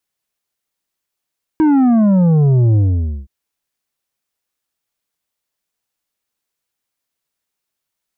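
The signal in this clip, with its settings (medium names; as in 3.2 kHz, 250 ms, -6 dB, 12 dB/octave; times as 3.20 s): sub drop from 320 Hz, over 1.67 s, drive 7.5 dB, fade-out 0.51 s, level -9.5 dB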